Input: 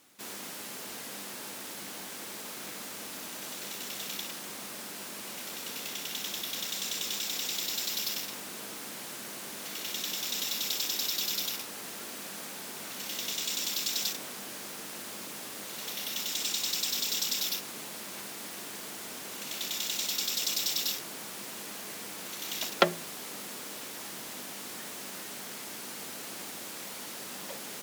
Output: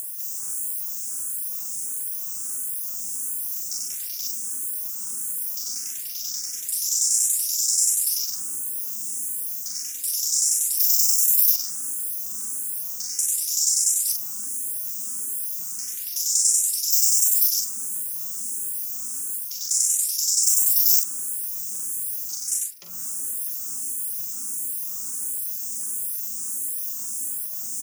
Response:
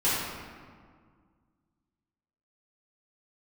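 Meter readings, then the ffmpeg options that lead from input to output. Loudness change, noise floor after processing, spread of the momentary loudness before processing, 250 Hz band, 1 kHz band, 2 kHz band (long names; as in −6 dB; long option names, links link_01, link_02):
+11.5 dB, −32 dBFS, 11 LU, can't be measured, below −15 dB, below −10 dB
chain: -filter_complex "[0:a]asplit=2[link_01][link_02];[link_02]adelay=61,lowpass=frequency=1900:poles=1,volume=-16dB,asplit=2[link_03][link_04];[link_04]adelay=61,lowpass=frequency=1900:poles=1,volume=0.34,asplit=2[link_05][link_06];[link_06]adelay=61,lowpass=frequency=1900:poles=1,volume=0.34[link_07];[link_01][link_03][link_05][link_07]amix=inputs=4:normalize=0,afwtdn=0.00794,areverse,acompressor=threshold=-43dB:ratio=5,areverse,equalizer=frequency=160:width_type=o:width=0.67:gain=-6,equalizer=frequency=630:width_type=o:width=0.67:gain=-10,equalizer=frequency=1600:width_type=o:width=0.67:gain=4,equalizer=frequency=4000:width_type=o:width=0.67:gain=-9,equalizer=frequency=16000:width_type=o:width=0.67:gain=-12,acompressor=mode=upward:threshold=-53dB:ratio=2.5,bandreject=frequency=4300:width=14,asubboost=boost=4:cutoff=240,bandreject=frequency=59.92:width_type=h:width=4,bandreject=frequency=119.84:width_type=h:width=4,bandreject=frequency=179.76:width_type=h:width=4,bandreject=frequency=239.68:width_type=h:width=4,bandreject=frequency=299.6:width_type=h:width=4,bandreject=frequency=359.52:width_type=h:width=4,bandreject=frequency=419.44:width_type=h:width=4,bandreject=frequency=479.36:width_type=h:width=4,bandreject=frequency=539.28:width_type=h:width=4,bandreject=frequency=599.2:width_type=h:width=4,bandreject=frequency=659.12:width_type=h:width=4,bandreject=frequency=719.04:width_type=h:width=4,bandreject=frequency=778.96:width_type=h:width=4,bandreject=frequency=838.88:width_type=h:width=4,bandreject=frequency=898.8:width_type=h:width=4,bandreject=frequency=958.72:width_type=h:width=4,bandreject=frequency=1018.64:width_type=h:width=4,bandreject=frequency=1078.56:width_type=h:width=4,bandreject=frequency=1138.48:width_type=h:width=4,bandreject=frequency=1198.4:width_type=h:width=4,bandreject=frequency=1258.32:width_type=h:width=4,bandreject=frequency=1318.24:width_type=h:width=4,bandreject=frequency=1378.16:width_type=h:width=4,bandreject=frequency=1438.08:width_type=h:width=4,bandreject=frequency=1498:width_type=h:width=4,bandreject=frequency=1557.92:width_type=h:width=4,bandreject=frequency=1617.84:width_type=h:width=4,bandreject=frequency=1677.76:width_type=h:width=4,bandreject=frequency=1737.68:width_type=h:width=4,bandreject=frequency=1797.6:width_type=h:width=4,bandreject=frequency=1857.52:width_type=h:width=4,bandreject=frequency=1917.44:width_type=h:width=4,bandreject=frequency=1977.36:width_type=h:width=4,bandreject=frequency=2037.28:width_type=h:width=4,bandreject=frequency=2097.2:width_type=h:width=4,bandreject=frequency=2157.12:width_type=h:width=4,bandreject=frequency=2217.04:width_type=h:width=4,bandreject=frequency=2276.96:width_type=h:width=4,aexciter=amount=9.8:drive=8.7:freq=5100,asplit=2[link_08][link_09];[link_09]adelay=43,volume=-5dB[link_10];[link_08][link_10]amix=inputs=2:normalize=0,crystalizer=i=5.5:c=0,asplit=2[link_11][link_12];[link_12]afreqshift=1.5[link_13];[link_11][link_13]amix=inputs=2:normalize=1,volume=-6dB"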